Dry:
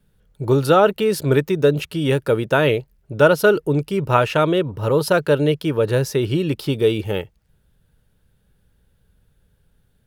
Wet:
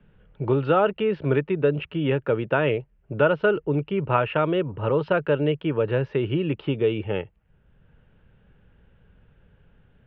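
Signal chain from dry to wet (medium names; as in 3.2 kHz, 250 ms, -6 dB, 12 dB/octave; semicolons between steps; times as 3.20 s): elliptic low-pass 2.9 kHz, stop band 80 dB; three bands compressed up and down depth 40%; trim -4.5 dB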